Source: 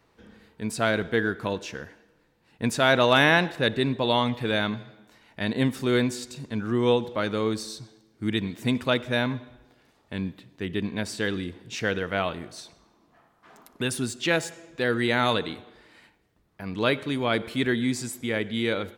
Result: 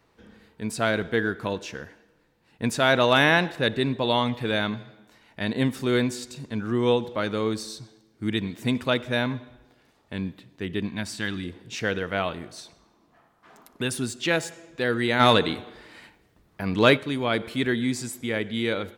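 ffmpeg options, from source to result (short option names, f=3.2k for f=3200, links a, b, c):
-filter_complex "[0:a]asettb=1/sr,asplit=3[a][b][c];[a]atrim=end=10.884[d];[b]atrim=start=10.88:end=11.44,asetpts=PTS-STARTPTS,afade=t=in:d=0.004:c=qsin,afade=t=out:st=0.556:d=0.004:c=qsin,equalizer=f=460:t=o:w=0.52:g=-14[e];[c]atrim=start=11.436[f];[d][e]acrossfade=d=0.004:c1=hsin:c2=qsin[g];[g][f]acrossfade=d=0.004:c1=qsin:c2=hsin,asplit=3[h][i][j];[h]afade=t=out:st=15.19:d=0.02[k];[i]acontrast=71,afade=t=in:st=15.19:d=0.02,afade=t=out:st=16.96:d=0.02[l];[j]afade=t=in:st=16.96:d=0.02[m];[k][l][m]amix=inputs=3:normalize=0"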